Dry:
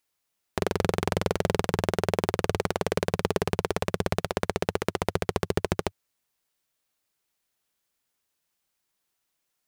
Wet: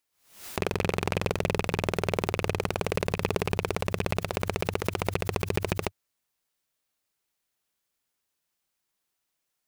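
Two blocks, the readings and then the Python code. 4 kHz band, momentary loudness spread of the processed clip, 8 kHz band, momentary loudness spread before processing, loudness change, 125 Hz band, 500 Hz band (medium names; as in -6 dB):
-0.5 dB, 3 LU, -1.5 dB, 3 LU, -1.5 dB, -0.5 dB, -2.0 dB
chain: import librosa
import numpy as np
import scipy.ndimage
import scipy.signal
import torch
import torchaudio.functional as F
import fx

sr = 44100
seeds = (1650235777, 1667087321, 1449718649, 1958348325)

y = fx.rattle_buzz(x, sr, strikes_db=-28.0, level_db=-19.0)
y = fx.pre_swell(y, sr, db_per_s=110.0)
y = y * 10.0 ** (-2.0 / 20.0)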